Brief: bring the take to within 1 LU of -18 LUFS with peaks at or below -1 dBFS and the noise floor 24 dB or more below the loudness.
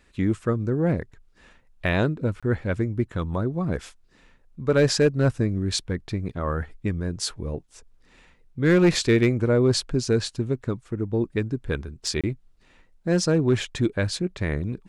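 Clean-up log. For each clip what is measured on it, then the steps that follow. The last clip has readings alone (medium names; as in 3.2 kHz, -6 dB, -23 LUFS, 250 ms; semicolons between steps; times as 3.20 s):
clipped samples 0.4%; clipping level -12.0 dBFS; dropouts 2; longest dropout 26 ms; loudness -24.5 LUFS; peak level -12.0 dBFS; loudness target -18.0 LUFS
-> clip repair -12 dBFS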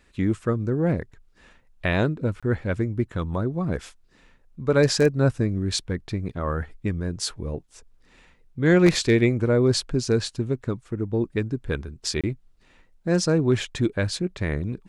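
clipped samples 0.0%; dropouts 2; longest dropout 26 ms
-> interpolate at 2.40/12.21 s, 26 ms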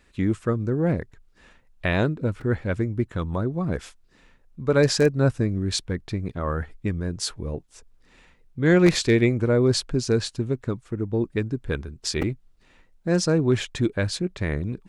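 dropouts 0; loudness -24.5 LUFS; peak level -3.0 dBFS; loudness target -18.0 LUFS
-> trim +6.5 dB; peak limiter -1 dBFS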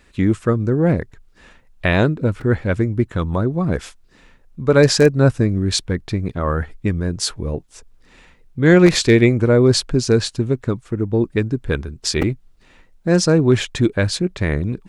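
loudness -18.0 LUFS; peak level -1.0 dBFS; noise floor -52 dBFS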